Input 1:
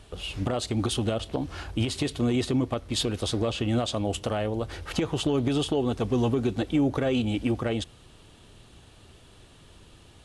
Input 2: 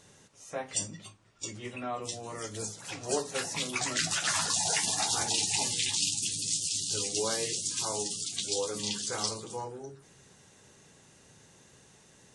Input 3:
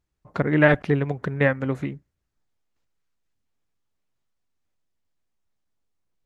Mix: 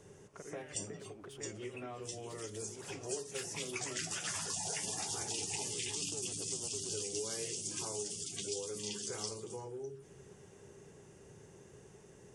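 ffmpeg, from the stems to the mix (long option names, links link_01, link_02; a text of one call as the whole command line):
ffmpeg -i stem1.wav -i stem2.wav -i stem3.wav -filter_complex "[0:a]asoftclip=type=tanh:threshold=-23dB,adelay=400,volume=-14dB[link_01];[1:a]volume=-1dB[link_02];[2:a]volume=-15.5dB[link_03];[link_01][link_03]amix=inputs=2:normalize=0,highpass=frequency=1000:poles=1,alimiter=level_in=12.5dB:limit=-24dB:level=0:latency=1:release=275,volume=-12.5dB,volume=0dB[link_04];[link_02][link_04]amix=inputs=2:normalize=0,equalizer=frequency=250:width_type=o:width=0.33:gain=-5,equalizer=frequency=400:width_type=o:width=0.33:gain=10,equalizer=frequency=4000:width_type=o:width=0.33:gain=-10,acrossover=split=240|2100[link_05][link_06][link_07];[link_05]acompressor=threshold=-56dB:ratio=4[link_08];[link_06]acompressor=threshold=-47dB:ratio=4[link_09];[link_07]acompressor=threshold=-32dB:ratio=4[link_10];[link_08][link_09][link_10]amix=inputs=3:normalize=0,tiltshelf=frequency=750:gain=4.5" out.wav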